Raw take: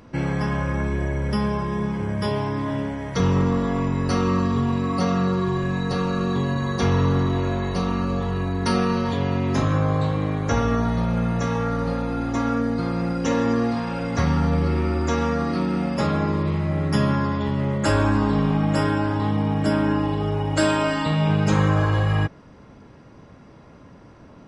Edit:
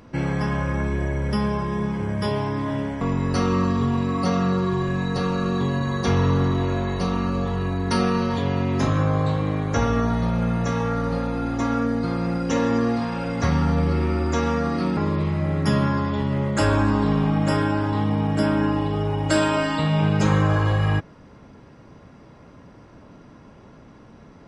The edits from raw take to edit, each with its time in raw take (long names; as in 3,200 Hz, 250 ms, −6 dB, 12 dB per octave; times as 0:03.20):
0:03.01–0:03.76: remove
0:15.72–0:16.24: remove